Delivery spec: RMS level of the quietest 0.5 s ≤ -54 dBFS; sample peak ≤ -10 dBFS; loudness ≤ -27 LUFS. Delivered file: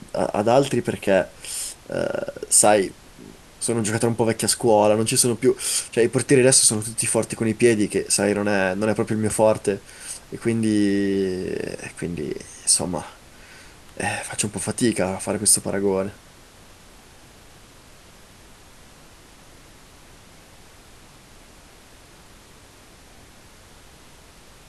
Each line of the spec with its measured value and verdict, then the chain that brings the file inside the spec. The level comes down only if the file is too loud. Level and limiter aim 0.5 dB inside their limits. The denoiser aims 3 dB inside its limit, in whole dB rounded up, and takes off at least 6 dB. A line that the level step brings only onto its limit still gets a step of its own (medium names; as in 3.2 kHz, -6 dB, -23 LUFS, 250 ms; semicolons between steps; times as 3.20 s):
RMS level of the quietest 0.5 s -48 dBFS: fail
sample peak -3.5 dBFS: fail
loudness -20.5 LUFS: fail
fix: trim -7 dB